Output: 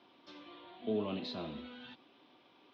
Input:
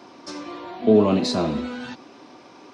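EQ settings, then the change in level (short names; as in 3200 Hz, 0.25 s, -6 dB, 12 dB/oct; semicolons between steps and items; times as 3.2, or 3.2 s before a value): ladder low-pass 3700 Hz, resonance 65%; -8.0 dB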